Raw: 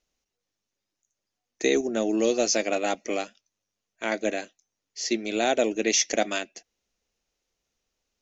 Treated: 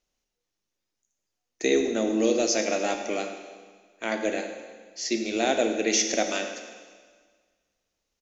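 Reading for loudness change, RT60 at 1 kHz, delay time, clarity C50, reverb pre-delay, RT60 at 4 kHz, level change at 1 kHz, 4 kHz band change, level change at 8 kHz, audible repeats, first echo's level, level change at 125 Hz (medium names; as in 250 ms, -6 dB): 0.0 dB, 1.6 s, 108 ms, 6.5 dB, 15 ms, 1.6 s, -0.5 dB, -0.5 dB, no reading, 1, -15.0 dB, no reading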